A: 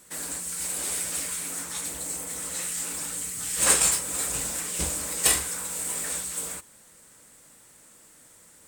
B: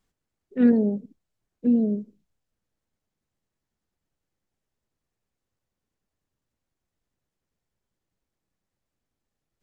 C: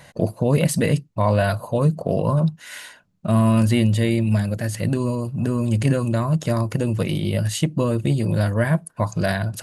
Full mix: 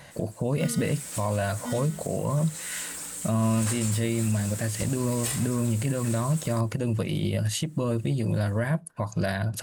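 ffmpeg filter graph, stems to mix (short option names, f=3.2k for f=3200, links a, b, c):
-filter_complex "[0:a]volume=-4dB,afade=t=in:st=0.79:d=0.23:silence=0.266073[a];[1:a]acrusher=samples=26:mix=1:aa=0.000001,volume=-12.5dB[b];[2:a]volume=-1dB[c];[a][b][c]amix=inputs=3:normalize=0,alimiter=limit=-16.5dB:level=0:latency=1:release=268"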